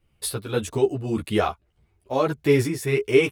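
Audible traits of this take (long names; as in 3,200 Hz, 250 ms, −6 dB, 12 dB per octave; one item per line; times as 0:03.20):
tremolo triangle 1.7 Hz, depth 60%
a shimmering, thickened sound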